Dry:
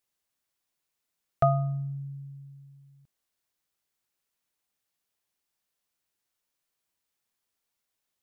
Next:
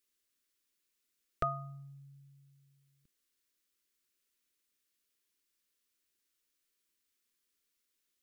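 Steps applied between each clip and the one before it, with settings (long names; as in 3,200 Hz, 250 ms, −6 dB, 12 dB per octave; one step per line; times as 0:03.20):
phaser with its sweep stopped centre 310 Hz, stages 4
level +1.5 dB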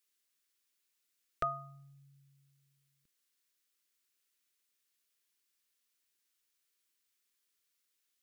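low-shelf EQ 450 Hz −9 dB
level +1 dB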